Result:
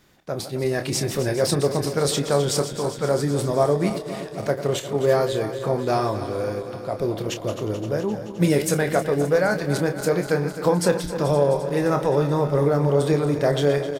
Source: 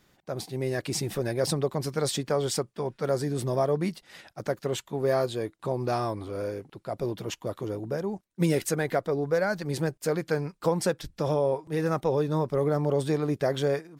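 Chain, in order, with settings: backward echo that repeats 130 ms, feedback 82%, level -11.5 dB; doubling 28 ms -9 dB; trim +5 dB

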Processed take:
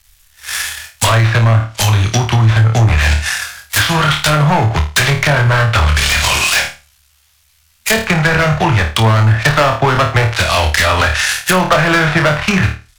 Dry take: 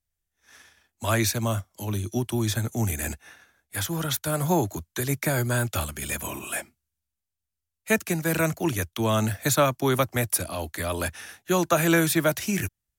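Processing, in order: dead-time distortion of 0.08 ms; low-pass that closes with the level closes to 1.2 kHz, closed at -22.5 dBFS; amplifier tone stack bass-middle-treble 10-0-10; in parallel at +2 dB: compression, threshold -50 dBFS, peak gain reduction 18.5 dB; on the sum: hard clipper -35.5 dBFS, distortion -9 dB; on a send: flutter echo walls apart 4.6 m, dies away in 0.3 s; on the sum: loudness maximiser +34 dB; trim -3.5 dB

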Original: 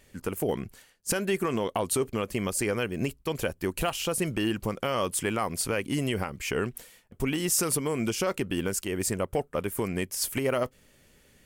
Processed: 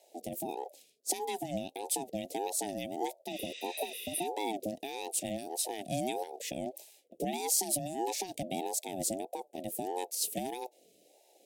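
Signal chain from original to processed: spectral replace 3.34–4.24 s, 730–9000 Hz before; inverse Chebyshev band-stop 460–1800 Hz, stop band 40 dB; ring modulator with a swept carrier 530 Hz, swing 20%, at 1.6 Hz

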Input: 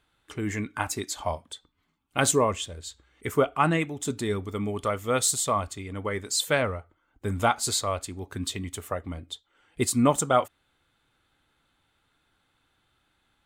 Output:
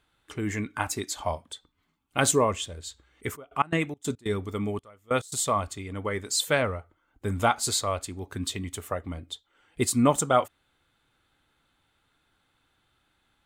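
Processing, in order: 3.35–5.38 s: trance gate "...x.xx.x.xxxxx" 141 bpm -24 dB

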